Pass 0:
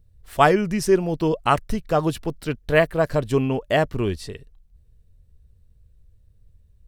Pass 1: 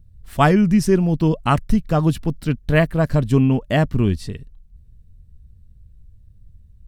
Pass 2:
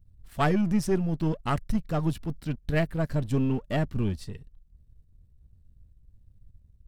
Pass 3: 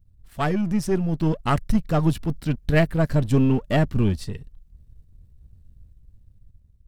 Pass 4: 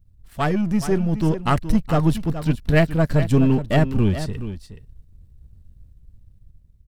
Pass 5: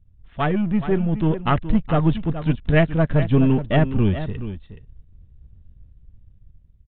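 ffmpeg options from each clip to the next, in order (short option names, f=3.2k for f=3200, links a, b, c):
-af "lowshelf=f=310:t=q:w=1.5:g=7.5"
-af "aeval=exprs='if(lt(val(0),0),0.447*val(0),val(0))':c=same,volume=-6.5dB"
-af "dynaudnorm=f=430:g=5:m=7dB"
-af "aecho=1:1:422:0.266,volume=2dB"
-af "aresample=8000,aresample=44100"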